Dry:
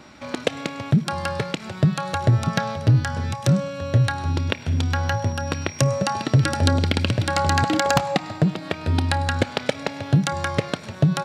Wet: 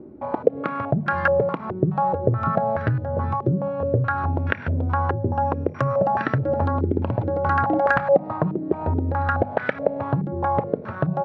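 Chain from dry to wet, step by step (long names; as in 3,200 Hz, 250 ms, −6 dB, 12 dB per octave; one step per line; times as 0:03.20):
mains-hum notches 50/100/150/200/250 Hz
downward compressor, threshold −21 dBFS, peak gain reduction 9 dB
low-pass on a step sequencer 4.7 Hz 380–1,600 Hz
level +1.5 dB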